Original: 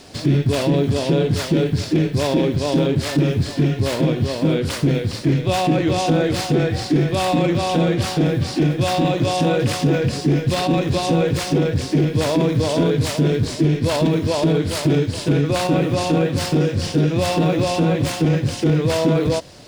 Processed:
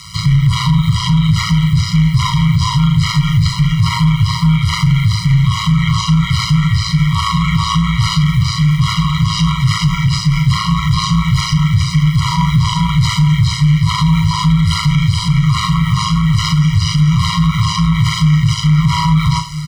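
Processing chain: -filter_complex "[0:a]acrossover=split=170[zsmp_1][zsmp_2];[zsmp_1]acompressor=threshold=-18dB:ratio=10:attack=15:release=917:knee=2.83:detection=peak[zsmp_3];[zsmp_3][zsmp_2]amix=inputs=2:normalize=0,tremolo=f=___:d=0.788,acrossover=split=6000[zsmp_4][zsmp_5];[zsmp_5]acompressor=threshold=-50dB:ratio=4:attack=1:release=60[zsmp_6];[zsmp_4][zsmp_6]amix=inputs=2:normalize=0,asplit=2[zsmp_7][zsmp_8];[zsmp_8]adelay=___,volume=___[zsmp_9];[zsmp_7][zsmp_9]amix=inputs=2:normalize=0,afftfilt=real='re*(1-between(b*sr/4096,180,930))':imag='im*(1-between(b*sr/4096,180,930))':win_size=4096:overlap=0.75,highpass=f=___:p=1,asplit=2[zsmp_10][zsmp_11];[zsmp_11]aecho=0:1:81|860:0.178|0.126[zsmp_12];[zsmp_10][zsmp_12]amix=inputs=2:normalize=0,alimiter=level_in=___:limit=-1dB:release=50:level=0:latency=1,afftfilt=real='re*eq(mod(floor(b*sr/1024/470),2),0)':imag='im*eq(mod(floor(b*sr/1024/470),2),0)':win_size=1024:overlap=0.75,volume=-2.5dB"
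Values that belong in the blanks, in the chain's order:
110, 38, -6dB, 48, 20dB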